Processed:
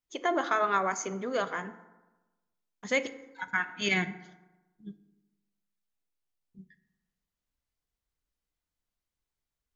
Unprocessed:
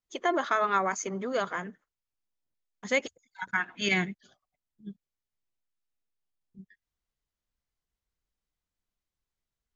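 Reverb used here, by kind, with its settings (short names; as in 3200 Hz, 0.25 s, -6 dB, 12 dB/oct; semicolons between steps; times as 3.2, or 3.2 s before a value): FDN reverb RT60 1.1 s, low-frequency decay 1.05×, high-frequency decay 0.5×, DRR 11 dB; gain -1 dB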